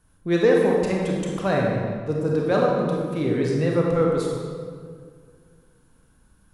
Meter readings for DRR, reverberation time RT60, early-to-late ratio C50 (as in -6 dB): -2.0 dB, 2.0 s, -0.5 dB